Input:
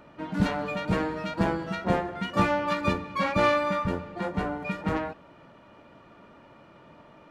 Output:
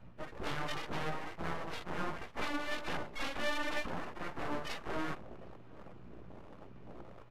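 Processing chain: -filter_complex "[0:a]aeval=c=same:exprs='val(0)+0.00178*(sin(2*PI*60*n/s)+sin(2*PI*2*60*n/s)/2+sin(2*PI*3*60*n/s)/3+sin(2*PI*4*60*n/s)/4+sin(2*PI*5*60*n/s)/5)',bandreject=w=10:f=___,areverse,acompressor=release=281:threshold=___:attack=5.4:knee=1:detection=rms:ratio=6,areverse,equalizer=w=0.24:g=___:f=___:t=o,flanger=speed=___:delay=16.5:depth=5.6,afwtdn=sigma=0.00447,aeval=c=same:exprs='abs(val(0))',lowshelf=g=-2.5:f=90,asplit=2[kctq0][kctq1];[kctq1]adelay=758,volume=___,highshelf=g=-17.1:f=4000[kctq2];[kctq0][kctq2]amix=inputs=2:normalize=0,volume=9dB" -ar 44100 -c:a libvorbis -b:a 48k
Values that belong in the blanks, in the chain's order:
7900, -35dB, -13.5, 190, 1.3, -26dB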